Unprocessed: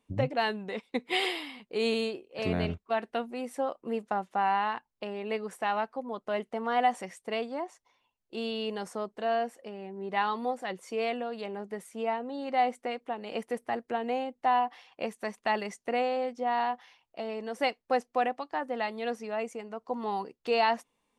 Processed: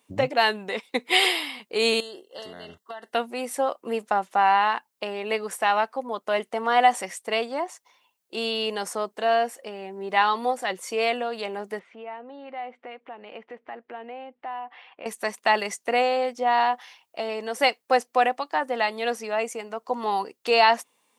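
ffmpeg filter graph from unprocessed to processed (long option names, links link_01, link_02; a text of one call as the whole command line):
ffmpeg -i in.wav -filter_complex "[0:a]asettb=1/sr,asplit=3[link_01][link_02][link_03];[link_01]atrim=end=2.004[link_04];[link_02]atrim=start=2:end=3.13,asetpts=PTS-STARTPTS,afade=type=in:duration=0.004:curve=qsin,afade=type=out:start_time=1.126:duration=0.004:curve=qsin,lowshelf=frequency=450:gain=-5,acompressor=threshold=-40dB:ratio=16:attack=3.2:release=140:knee=1:detection=peak,asuperstop=centerf=2400:order=20:qfactor=4.1[link_05];[link_03]atrim=start=3.126[link_06];[link_04][link_05]acrossfade=duration=0.004:curve1=hsin:curve2=qsin[link_07];[link_07][link_06]acrossfade=duration=0.004:curve1=qsin:curve2=hsin,asettb=1/sr,asplit=3[link_08][link_09][link_10];[link_08]atrim=end=11.794[link_11];[link_09]atrim=start=11.79:end=15.06,asetpts=PTS-STARTPTS,afade=type=in:duration=0.004:curve=qsin,afade=type=out:start_time=3.266:duration=0.004:curve=qsin,lowpass=frequency=2900:width=0.5412,lowpass=frequency=2900:width=1.3066,acompressor=threshold=-52dB:ratio=2:attack=3.2:release=140:knee=1:detection=peak[link_12];[link_10]atrim=start=15.056[link_13];[link_11][link_12]acrossfade=duration=0.004:curve1=hsin:curve2=qsin[link_14];[link_14][link_13]acrossfade=duration=0.004:curve1=qsin:curve2=hsin,highpass=frequency=520:poles=1,highshelf=frequency=6800:gain=8.5,volume=9dB" out.wav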